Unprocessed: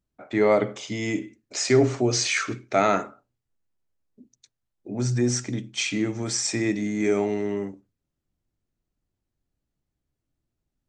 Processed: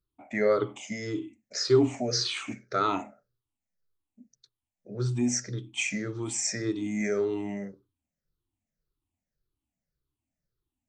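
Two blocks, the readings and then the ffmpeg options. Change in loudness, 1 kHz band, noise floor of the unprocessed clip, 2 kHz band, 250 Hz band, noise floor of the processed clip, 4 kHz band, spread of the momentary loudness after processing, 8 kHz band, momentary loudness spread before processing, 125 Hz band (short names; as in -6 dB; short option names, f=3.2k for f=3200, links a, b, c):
-4.5 dB, -5.0 dB, -83 dBFS, -6.0 dB, -5.0 dB, under -85 dBFS, -3.0 dB, 12 LU, -4.5 dB, 10 LU, -5.0 dB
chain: -af "afftfilt=real='re*pow(10,18/40*sin(2*PI*(0.6*log(max(b,1)*sr/1024/100)/log(2)-(-1.8)*(pts-256)/sr)))':imag='im*pow(10,18/40*sin(2*PI*(0.6*log(max(b,1)*sr/1024/100)/log(2)-(-1.8)*(pts-256)/sr)))':win_size=1024:overlap=0.75,volume=-8.5dB"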